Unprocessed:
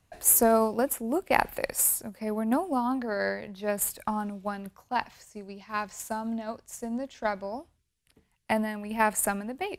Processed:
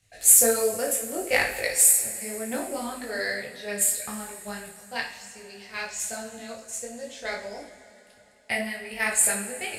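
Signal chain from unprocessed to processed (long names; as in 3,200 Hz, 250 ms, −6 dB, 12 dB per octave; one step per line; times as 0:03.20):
octave-band graphic EQ 250/500/1,000/2,000/4,000/8,000 Hz −8/+5/−12/+9/+6/+11 dB
coupled-rooms reverb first 0.48 s, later 3.9 s, from −17 dB, DRR 0.5 dB
micro pitch shift up and down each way 23 cents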